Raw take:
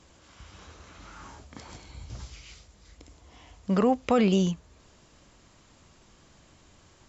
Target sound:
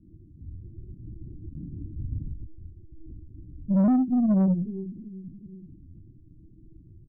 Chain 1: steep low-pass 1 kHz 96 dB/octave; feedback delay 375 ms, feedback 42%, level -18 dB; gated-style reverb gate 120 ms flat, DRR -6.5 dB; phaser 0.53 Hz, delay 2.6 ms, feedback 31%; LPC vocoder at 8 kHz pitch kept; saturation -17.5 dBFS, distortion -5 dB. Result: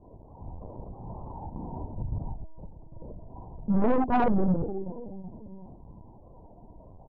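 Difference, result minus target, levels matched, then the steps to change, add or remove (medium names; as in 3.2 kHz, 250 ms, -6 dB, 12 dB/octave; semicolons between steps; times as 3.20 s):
1 kHz band +14.5 dB
change: steep low-pass 380 Hz 96 dB/octave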